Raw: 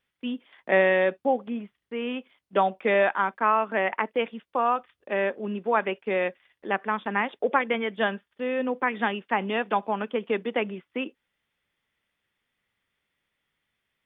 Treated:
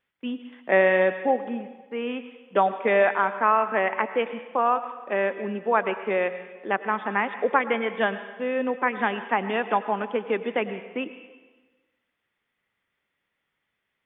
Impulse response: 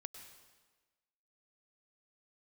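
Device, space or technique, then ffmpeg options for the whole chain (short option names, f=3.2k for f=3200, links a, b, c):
filtered reverb send: -filter_complex "[0:a]asplit=2[a][b];[b]highpass=f=220:p=1,lowpass=3.2k[c];[1:a]atrim=start_sample=2205[d];[c][d]afir=irnorm=-1:irlink=0,volume=8dB[e];[a][e]amix=inputs=2:normalize=0,volume=-5.5dB"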